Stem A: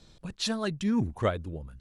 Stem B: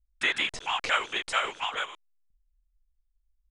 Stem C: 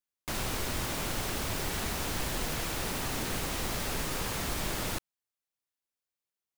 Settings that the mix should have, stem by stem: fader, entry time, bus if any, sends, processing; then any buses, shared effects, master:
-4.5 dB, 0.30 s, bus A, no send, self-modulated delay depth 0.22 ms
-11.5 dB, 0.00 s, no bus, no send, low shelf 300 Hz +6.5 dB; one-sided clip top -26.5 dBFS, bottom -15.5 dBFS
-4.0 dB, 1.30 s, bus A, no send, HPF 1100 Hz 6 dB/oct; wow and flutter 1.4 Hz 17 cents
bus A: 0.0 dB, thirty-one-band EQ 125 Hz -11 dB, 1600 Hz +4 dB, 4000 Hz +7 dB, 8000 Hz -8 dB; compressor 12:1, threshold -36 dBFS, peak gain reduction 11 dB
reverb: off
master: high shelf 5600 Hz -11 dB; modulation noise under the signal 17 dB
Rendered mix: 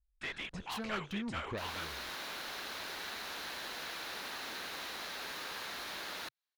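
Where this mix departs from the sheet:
stem C -4.0 dB -> +4.0 dB; master: missing modulation noise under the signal 17 dB

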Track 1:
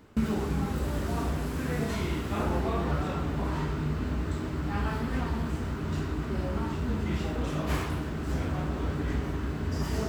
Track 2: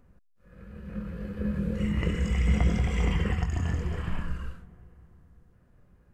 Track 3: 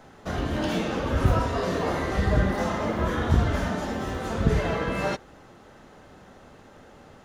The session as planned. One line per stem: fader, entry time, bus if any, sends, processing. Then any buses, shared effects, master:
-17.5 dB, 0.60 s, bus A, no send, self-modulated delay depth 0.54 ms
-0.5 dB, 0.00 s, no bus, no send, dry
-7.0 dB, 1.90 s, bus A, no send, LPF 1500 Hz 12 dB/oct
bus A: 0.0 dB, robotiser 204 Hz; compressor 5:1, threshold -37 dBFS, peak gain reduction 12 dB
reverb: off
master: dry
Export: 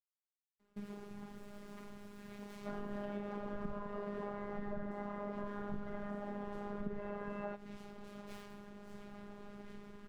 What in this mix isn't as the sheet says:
stem 2: muted; stem 3: entry 1.90 s -> 2.40 s

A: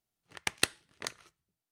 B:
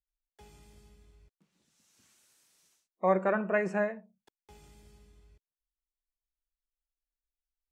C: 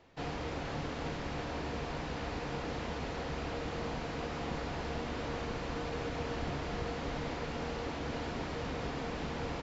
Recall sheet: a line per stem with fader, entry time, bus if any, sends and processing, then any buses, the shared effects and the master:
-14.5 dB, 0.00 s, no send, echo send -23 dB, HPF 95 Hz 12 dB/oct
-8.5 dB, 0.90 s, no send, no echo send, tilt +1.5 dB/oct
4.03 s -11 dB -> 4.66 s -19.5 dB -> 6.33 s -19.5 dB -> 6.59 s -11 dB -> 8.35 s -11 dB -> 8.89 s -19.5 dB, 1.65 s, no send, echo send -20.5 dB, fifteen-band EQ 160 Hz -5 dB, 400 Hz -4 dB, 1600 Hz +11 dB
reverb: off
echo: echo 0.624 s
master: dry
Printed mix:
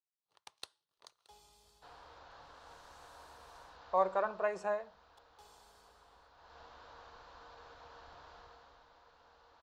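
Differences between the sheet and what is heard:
stem A -14.5 dB -> -24.5 dB; stem C -11.0 dB -> -22.0 dB; master: extra graphic EQ 125/250/500/1000/2000/4000 Hz -4/-9/+4/+11/-10/+10 dB

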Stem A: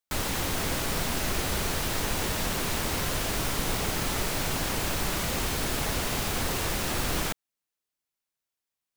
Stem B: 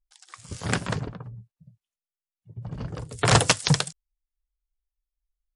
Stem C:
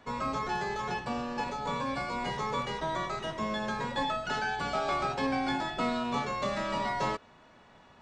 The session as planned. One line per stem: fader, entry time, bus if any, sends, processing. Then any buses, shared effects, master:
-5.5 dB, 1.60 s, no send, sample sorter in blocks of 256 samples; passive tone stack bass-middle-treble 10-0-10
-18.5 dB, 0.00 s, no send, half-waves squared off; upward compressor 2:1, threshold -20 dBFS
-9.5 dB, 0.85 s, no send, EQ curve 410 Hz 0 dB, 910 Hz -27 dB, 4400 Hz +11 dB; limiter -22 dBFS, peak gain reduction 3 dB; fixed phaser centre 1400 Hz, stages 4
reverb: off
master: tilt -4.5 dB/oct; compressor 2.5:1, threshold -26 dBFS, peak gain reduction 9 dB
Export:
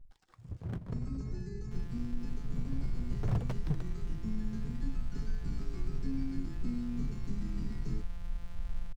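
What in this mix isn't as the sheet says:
stem A -5.5 dB -> -16.5 dB; stem B -18.5 dB -> -28.0 dB

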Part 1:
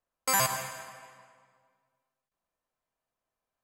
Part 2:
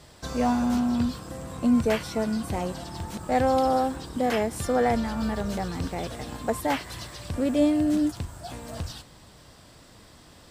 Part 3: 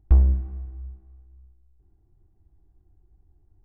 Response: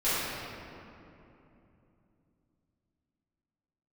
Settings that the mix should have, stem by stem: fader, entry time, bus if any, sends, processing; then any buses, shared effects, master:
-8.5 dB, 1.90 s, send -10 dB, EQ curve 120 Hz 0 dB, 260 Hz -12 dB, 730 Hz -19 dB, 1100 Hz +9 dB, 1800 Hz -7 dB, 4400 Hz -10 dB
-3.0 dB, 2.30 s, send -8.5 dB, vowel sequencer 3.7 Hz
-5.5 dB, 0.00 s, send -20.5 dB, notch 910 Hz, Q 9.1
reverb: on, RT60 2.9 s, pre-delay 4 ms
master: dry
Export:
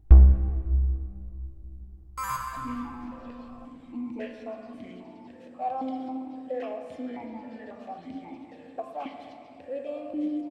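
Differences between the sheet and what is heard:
stem 2: send -8.5 dB -> -16.5 dB; stem 3 -5.5 dB -> +3.0 dB

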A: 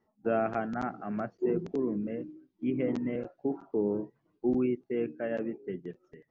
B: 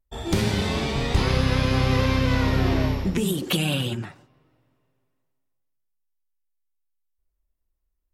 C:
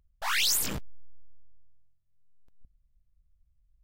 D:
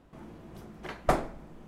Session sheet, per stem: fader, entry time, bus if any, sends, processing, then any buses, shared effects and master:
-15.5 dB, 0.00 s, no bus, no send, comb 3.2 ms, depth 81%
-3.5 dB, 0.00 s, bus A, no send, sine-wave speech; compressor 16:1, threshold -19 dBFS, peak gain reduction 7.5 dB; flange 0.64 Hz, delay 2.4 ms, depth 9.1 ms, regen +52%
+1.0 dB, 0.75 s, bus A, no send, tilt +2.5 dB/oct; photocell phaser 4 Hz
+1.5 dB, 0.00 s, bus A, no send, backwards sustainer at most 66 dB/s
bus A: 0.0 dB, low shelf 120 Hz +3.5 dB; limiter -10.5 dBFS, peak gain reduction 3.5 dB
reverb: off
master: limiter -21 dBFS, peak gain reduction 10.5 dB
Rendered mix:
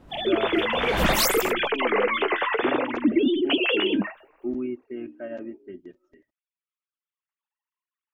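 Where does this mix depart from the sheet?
stem A -15.5 dB -> -5.0 dB; stem B -3.5 dB -> +5.0 dB; master: missing limiter -21 dBFS, peak gain reduction 10.5 dB

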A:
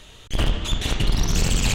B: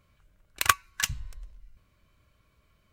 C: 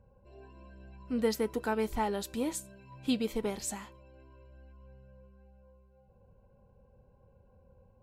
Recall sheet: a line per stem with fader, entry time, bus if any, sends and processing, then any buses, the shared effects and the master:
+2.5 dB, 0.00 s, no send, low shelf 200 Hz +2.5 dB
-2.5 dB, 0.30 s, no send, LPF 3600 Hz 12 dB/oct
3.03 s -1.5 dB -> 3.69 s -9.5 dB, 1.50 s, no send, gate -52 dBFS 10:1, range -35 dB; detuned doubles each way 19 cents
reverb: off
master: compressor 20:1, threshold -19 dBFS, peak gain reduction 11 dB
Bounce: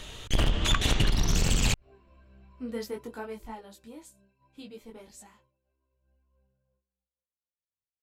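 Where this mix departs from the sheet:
stem A: missing low shelf 200 Hz +2.5 dB; stem B: entry 0.30 s -> 0.05 s

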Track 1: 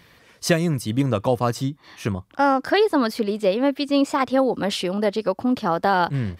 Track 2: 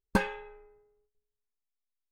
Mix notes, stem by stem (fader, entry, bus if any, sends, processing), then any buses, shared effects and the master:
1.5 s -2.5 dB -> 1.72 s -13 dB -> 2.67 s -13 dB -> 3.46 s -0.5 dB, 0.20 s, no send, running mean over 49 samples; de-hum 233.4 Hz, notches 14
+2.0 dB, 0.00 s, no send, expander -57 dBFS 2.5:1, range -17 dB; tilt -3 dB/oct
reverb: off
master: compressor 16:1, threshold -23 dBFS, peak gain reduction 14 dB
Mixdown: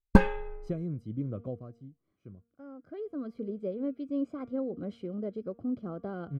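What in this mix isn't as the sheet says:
stem 1 -2.5 dB -> -12.0 dB; master: missing compressor 16:1, threshold -23 dBFS, peak gain reduction 14 dB

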